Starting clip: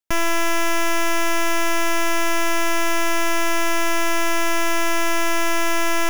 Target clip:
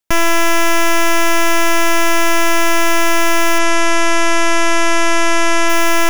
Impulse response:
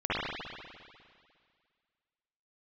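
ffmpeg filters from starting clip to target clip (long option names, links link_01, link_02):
-filter_complex "[0:a]asplit=3[link_01][link_02][link_03];[link_01]afade=type=out:start_time=3.58:duration=0.02[link_04];[link_02]lowpass=frequency=9800:width=0.5412,lowpass=frequency=9800:width=1.3066,afade=type=in:start_time=3.58:duration=0.02,afade=type=out:start_time=5.68:duration=0.02[link_05];[link_03]afade=type=in:start_time=5.68:duration=0.02[link_06];[link_04][link_05][link_06]amix=inputs=3:normalize=0,volume=7dB"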